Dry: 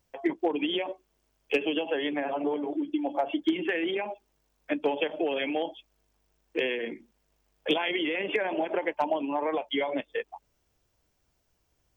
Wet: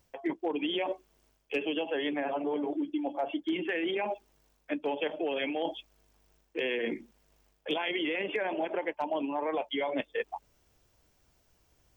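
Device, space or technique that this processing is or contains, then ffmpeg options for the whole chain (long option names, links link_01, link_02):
compression on the reversed sound: -af "areverse,acompressor=threshold=-34dB:ratio=6,areverse,volume=5dB"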